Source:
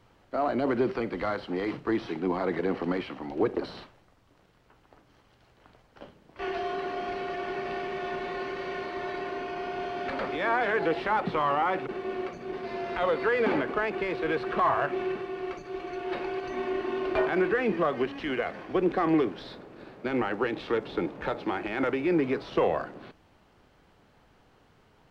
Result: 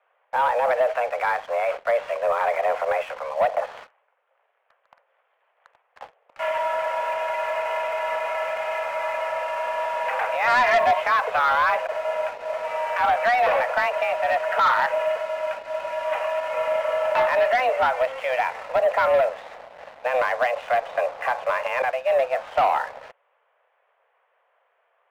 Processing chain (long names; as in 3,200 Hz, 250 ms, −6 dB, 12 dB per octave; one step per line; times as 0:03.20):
single-sideband voice off tune +250 Hz 250–2,600 Hz
0:10.47–0:11.02: comb filter 2.9 ms, depth 83%
0:21.82–0:22.34: downward expander −23 dBFS
leveller curve on the samples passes 2